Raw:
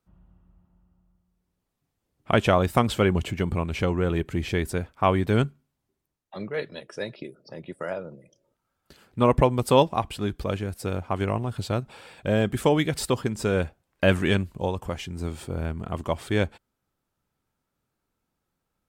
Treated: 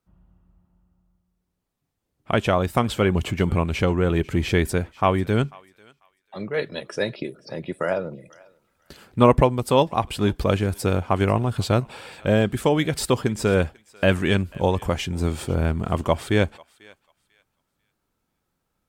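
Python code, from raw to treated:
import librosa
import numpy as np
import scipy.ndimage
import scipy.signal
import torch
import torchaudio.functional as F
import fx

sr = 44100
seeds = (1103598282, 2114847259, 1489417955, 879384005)

p1 = fx.rider(x, sr, range_db=4, speed_s=0.5)
p2 = p1 + fx.echo_thinned(p1, sr, ms=493, feedback_pct=25, hz=1100.0, wet_db=-21, dry=0)
y = p2 * 10.0 ** (3.5 / 20.0)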